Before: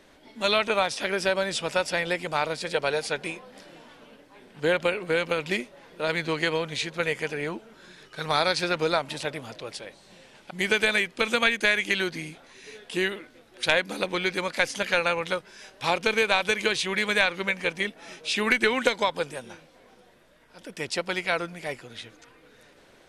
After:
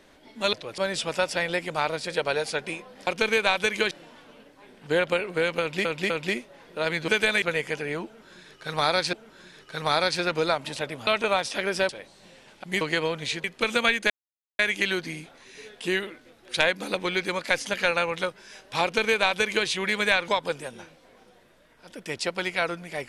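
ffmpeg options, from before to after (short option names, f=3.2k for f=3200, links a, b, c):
-filter_complex "[0:a]asplit=16[a][b][c][d][e][f][g][h][i][j][k][l][m][n][o][p];[a]atrim=end=0.532[q];[b]atrim=start=9.508:end=9.762[r];[c]atrim=start=1.348:end=3.642[s];[d]atrim=start=15.918:end=16.762[t];[e]atrim=start=3.638:end=5.582[u];[f]atrim=start=5.328:end=5.582[v];[g]atrim=start=5.328:end=6.312[w];[h]atrim=start=10.678:end=11.022[x];[i]atrim=start=6.938:end=8.652[y];[j]atrim=start=7.568:end=9.512[z];[k]atrim=start=0.528:end=1.352[aa];[l]atrim=start=9.758:end=10.682[ab];[m]atrim=start=6.308:end=6.942[ac];[n]atrim=start=11.018:end=11.68,asetpts=PTS-STARTPTS,afade=t=out:st=0.658:d=0.004:c=hsin,apad=pad_dur=0.49[ad];[o]atrim=start=11.68:end=17.372,asetpts=PTS-STARTPTS,afade=t=in:d=0.004:c=hsin[ae];[p]atrim=start=18.988[af];[q][r]acrossfade=d=0.004:c1=hsin:c2=hsin[ag];[ag][s]acrossfade=d=0.004:c1=hsin:c2=hsin[ah];[ah][t]acrossfade=d=0.004:c1=hsin:c2=hsin[ai];[ai][u]acrossfade=d=0.004:c1=hsin:c2=hsin[aj];[aj][v]acrossfade=d=0.004:c1=hsin:c2=hsin[ak];[ak][w]acrossfade=d=0.004:c1=hsin:c2=hsin[al];[al][x]acrossfade=d=0.004:c1=hsin:c2=hsin[am];[am][y]acrossfade=d=0.004:c1=hsin:c2=hsin[an];[an][z]acrossfade=d=0.004:c1=hsin:c2=hsin[ao];[ao][aa]acrossfade=d=0.004:c1=hsin:c2=hsin[ap];[ap][ab]acrossfade=d=0.004:c1=hsin:c2=hsin[aq];[aq][ac]acrossfade=d=0.004:c1=hsin:c2=hsin[ar];[ad][ae]concat=n=2:v=0:a=1[as];[ar][as]acrossfade=d=0.004:c1=hsin:c2=hsin[at];[at][af]acrossfade=d=0.004:c1=hsin:c2=hsin"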